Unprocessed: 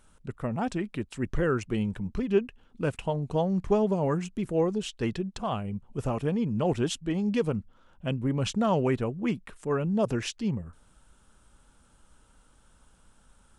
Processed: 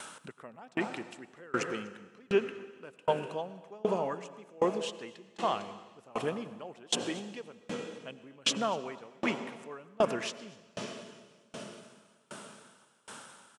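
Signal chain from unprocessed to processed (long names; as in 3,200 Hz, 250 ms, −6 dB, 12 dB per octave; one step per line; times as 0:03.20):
high-pass filter 110 Hz
convolution reverb RT60 4.4 s, pre-delay 84 ms, DRR 7.5 dB
in parallel at −3 dB: brickwall limiter −23.5 dBFS, peak gain reduction 11 dB
on the sum: meter weighting curve A
upward compression, threshold −33 dBFS
single-tap delay 246 ms −14.5 dB
tremolo with a ramp in dB decaying 1.3 Hz, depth 29 dB
level +2.5 dB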